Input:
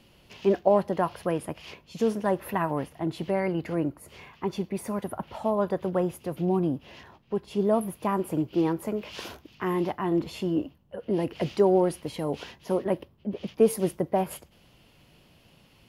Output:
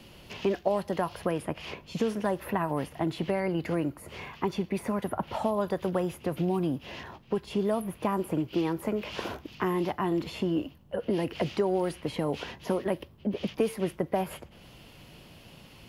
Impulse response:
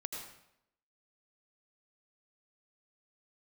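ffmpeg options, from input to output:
-filter_complex "[0:a]acrossover=split=84|1400|3100[s0][s1][s2][s3];[s0]acompressor=threshold=0.00112:ratio=4[s4];[s1]acompressor=threshold=0.02:ratio=4[s5];[s2]acompressor=threshold=0.00316:ratio=4[s6];[s3]acompressor=threshold=0.00141:ratio=4[s7];[s4][s5][s6][s7]amix=inputs=4:normalize=0,volume=2.24"

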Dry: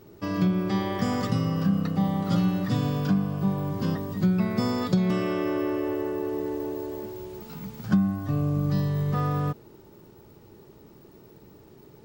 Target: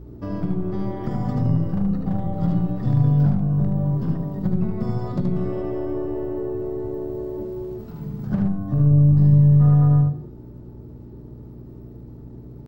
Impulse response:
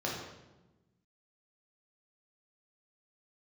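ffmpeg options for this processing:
-filter_complex "[0:a]tiltshelf=f=930:g=8.5,bandreject=f=60:t=h:w=6,bandreject=f=120:t=h:w=6,bandreject=f=180:t=h:w=6,bandreject=f=240:t=h:w=6,bandreject=f=300:t=h:w=6,bandreject=f=360:t=h:w=6,bandreject=f=420:t=h:w=6,bandreject=f=480:t=h:w=6,bandreject=f=540:t=h:w=6,aeval=exprs='0.335*(cos(1*acos(clip(val(0)/0.335,-1,1)))-cos(1*PI/2))+0.00841*(cos(2*acos(clip(val(0)/0.335,-1,1)))-cos(2*PI/2))+0.0335*(cos(4*acos(clip(val(0)/0.335,-1,1)))-cos(4*PI/2))+0.00668*(cos(6*acos(clip(val(0)/0.335,-1,1)))-cos(6*PI/2))':c=same,acrossover=split=150[s0][s1];[s1]acompressor=threshold=0.0447:ratio=2.5[s2];[s0][s2]amix=inputs=2:normalize=0,lowshelf=f=130:g=8.5,atempo=0.95,aeval=exprs='val(0)+0.02*(sin(2*PI*60*n/s)+sin(2*PI*2*60*n/s)/2+sin(2*PI*3*60*n/s)/3+sin(2*PI*4*60*n/s)/4+sin(2*PI*5*60*n/s)/5)':c=same,aecho=1:1:76:0.596,asplit=2[s3][s4];[1:a]atrim=start_sample=2205,afade=t=out:st=0.28:d=0.01,atrim=end_sample=12789,lowpass=5200[s5];[s4][s5]afir=irnorm=-1:irlink=0,volume=0.224[s6];[s3][s6]amix=inputs=2:normalize=0,volume=0.631"

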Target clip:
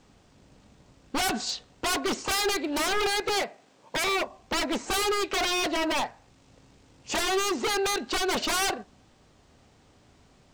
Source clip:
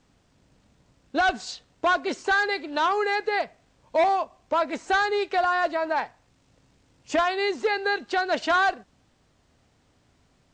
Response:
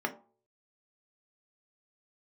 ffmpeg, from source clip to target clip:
-filter_complex "[0:a]asettb=1/sr,asplit=3[s0][s1][s2];[s0]atrim=end=3.424[s3];[s1]atrim=start=3.42:end=4.07,asetpts=PTS-STARTPTS,afade=t=in:d=0.004:c=qsin,afade=t=out:st=0.646:d=0.004:c=qsin,highpass=220[s4];[s2]atrim=start=4.066[s5];[s3][s4]acrossfade=d=0.004:c1=hsin:c2=qsin[s6];[s6][s5]acrossfade=d=0.004:c1=qsin:c2=hsin,aeval=exprs='0.0447*(abs(mod(val(0)/0.0447+3,4)-2)-1)':c=same,asplit=2[s7][s8];[1:a]atrim=start_sample=2205,lowpass=f=2000:w=0.5412,lowpass=f=2000:w=1.3066[s9];[s8][s9]afir=irnorm=-1:irlink=0,volume=0.1[s10];[s7][s10]amix=inputs=2:normalize=0,volume=1.78"

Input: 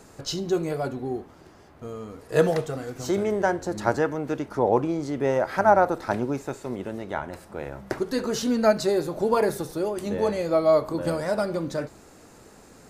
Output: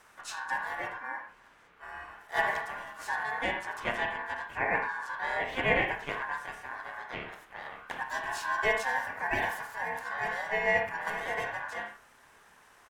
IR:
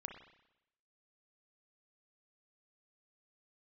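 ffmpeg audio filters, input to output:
-filter_complex "[0:a]asplit=3[s0][s1][s2];[s1]asetrate=29433,aresample=44100,atempo=1.49831,volume=0.355[s3];[s2]asetrate=58866,aresample=44100,atempo=0.749154,volume=0.708[s4];[s0][s3][s4]amix=inputs=3:normalize=0,aeval=exprs='val(0)*sin(2*PI*1300*n/s)':c=same[s5];[1:a]atrim=start_sample=2205,atrim=end_sample=6615,asetrate=48510,aresample=44100[s6];[s5][s6]afir=irnorm=-1:irlink=0,volume=0.708"

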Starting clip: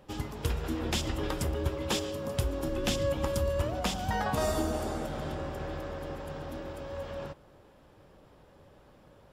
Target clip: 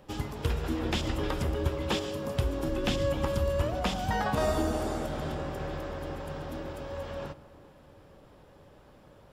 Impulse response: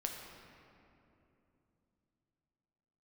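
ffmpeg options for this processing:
-filter_complex "[0:a]acrossover=split=4200[s0][s1];[s1]acompressor=threshold=0.00501:ratio=4:attack=1:release=60[s2];[s0][s2]amix=inputs=2:normalize=0,asplit=2[s3][s4];[1:a]atrim=start_sample=2205[s5];[s4][s5]afir=irnorm=-1:irlink=0,volume=0.282[s6];[s3][s6]amix=inputs=2:normalize=0"

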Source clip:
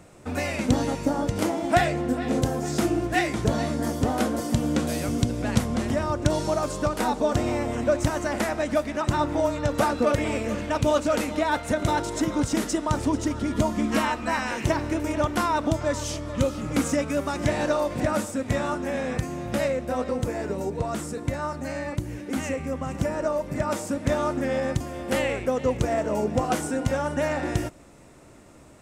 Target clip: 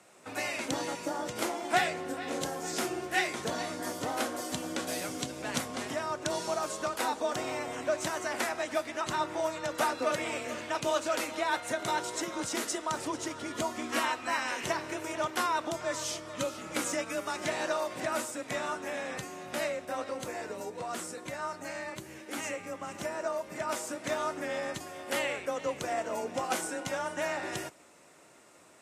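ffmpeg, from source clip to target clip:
-af "highpass=f=930:p=1,afreqshift=22,volume=0.75" -ar 32000 -c:a aac -b:a 48k

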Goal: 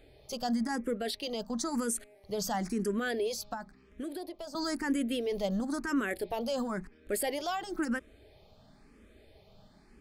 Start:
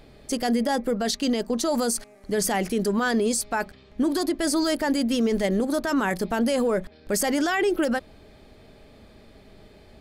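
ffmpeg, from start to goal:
-filter_complex "[0:a]asettb=1/sr,asplit=3[s0][s1][s2];[s0]atrim=end=3.534[s3];[s1]atrim=start=3.53:end=4.55,asetpts=PTS-STARTPTS,afade=t=in:d=0.004:c=qsin,afade=t=out:st=1.016:d=0.004:c=qsin,acrossover=split=420|1400[s4][s5][s6];[s4]acompressor=threshold=0.0141:ratio=4[s7];[s5]acompressor=threshold=0.02:ratio=4[s8];[s6]acompressor=threshold=0.00631:ratio=4[s9];[s7][s8][s9]amix=inputs=3:normalize=0[s10];[s2]atrim=start=4.546[s11];[s3][s10]acrossfade=d=0.004:c1=hsin:c2=qsin[s12];[s12][s11]acrossfade=d=0.004:c1=qsin:c2=hsin,asplit=2[s13][s14];[s14]afreqshift=0.98[s15];[s13][s15]amix=inputs=2:normalize=1,volume=0.531"

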